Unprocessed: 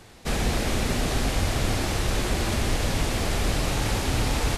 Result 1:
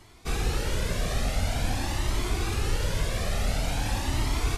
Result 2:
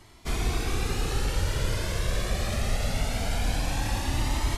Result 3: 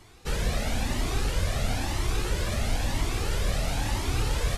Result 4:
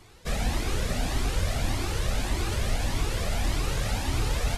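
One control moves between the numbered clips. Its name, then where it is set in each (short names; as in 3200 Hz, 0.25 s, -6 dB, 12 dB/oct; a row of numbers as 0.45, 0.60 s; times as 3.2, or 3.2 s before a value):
cascading flanger, rate: 0.47, 0.22, 1, 1.7 Hz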